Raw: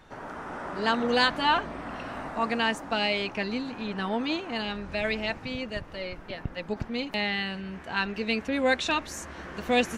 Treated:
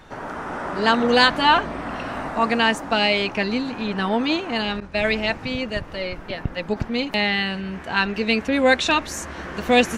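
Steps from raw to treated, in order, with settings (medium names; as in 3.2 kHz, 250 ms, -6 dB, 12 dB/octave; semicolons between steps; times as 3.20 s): 4.80–5.39 s: expander -31 dBFS; trim +7.5 dB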